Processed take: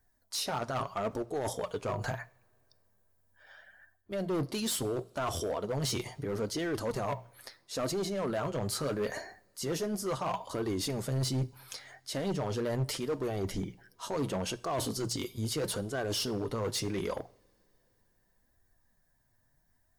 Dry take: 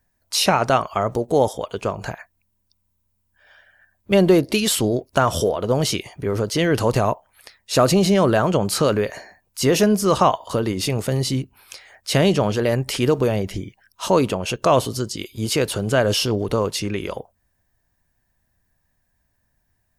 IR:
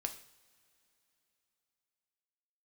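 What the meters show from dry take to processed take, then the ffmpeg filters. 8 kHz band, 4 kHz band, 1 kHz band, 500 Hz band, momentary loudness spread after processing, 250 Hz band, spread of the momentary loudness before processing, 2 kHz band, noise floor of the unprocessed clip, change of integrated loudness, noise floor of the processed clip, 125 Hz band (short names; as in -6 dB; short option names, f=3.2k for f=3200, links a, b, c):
-11.0 dB, -12.5 dB, -15.0 dB, -14.5 dB, 7 LU, -14.5 dB, 12 LU, -14.5 dB, -70 dBFS, -14.0 dB, -72 dBFS, -13.0 dB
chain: -filter_complex "[0:a]equalizer=f=2.6k:w=3.4:g=-8,bandreject=f=60:t=h:w=6,bandreject=f=120:t=h:w=6,bandreject=f=180:t=h:w=6,areverse,acompressor=threshold=-25dB:ratio=16,areverse,flanger=delay=2.6:depth=5.7:regen=31:speed=0.75:shape=sinusoidal,volume=29dB,asoftclip=hard,volume=-29dB,asplit=2[a][b];[1:a]atrim=start_sample=2205[c];[b][c]afir=irnorm=-1:irlink=0,volume=-7.5dB[d];[a][d]amix=inputs=2:normalize=0,volume=-1.5dB"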